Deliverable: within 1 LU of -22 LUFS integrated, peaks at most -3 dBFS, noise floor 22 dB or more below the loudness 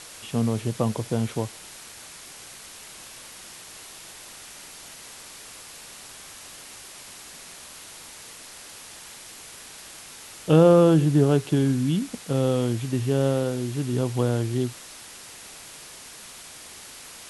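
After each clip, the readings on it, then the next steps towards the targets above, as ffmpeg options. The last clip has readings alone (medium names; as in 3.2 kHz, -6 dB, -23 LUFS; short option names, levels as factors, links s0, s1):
noise floor -44 dBFS; noise floor target -45 dBFS; loudness -23.0 LUFS; peak level -5.0 dBFS; loudness target -22.0 LUFS
-> -af "afftdn=nr=6:nf=-44"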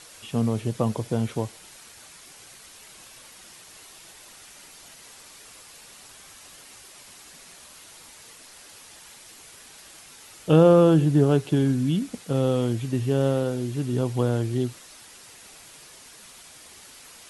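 noise floor -48 dBFS; loudness -23.0 LUFS; peak level -5.5 dBFS; loudness target -22.0 LUFS
-> -af "volume=1.12"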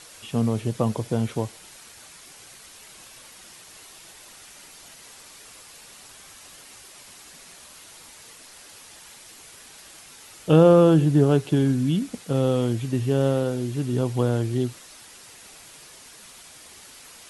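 loudness -22.0 LUFS; peak level -4.5 dBFS; noise floor -47 dBFS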